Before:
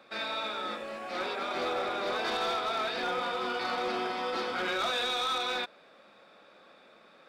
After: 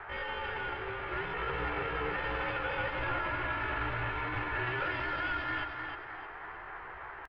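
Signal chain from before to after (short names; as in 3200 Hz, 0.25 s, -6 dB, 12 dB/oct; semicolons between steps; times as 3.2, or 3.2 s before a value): minimum comb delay 3.3 ms; dynamic EQ 360 Hz, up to -6 dB, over -51 dBFS, Q 0.86; mistuned SSB -290 Hz 200–2100 Hz; in parallel at -3 dB: compressor 12:1, threshold -45 dBFS, peak gain reduction 13.5 dB; on the sum: band noise 480–1300 Hz -46 dBFS; pitch shift +6.5 st; low shelf 110 Hz +6.5 dB; on a send: feedback echo 0.308 s, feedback 37%, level -6 dB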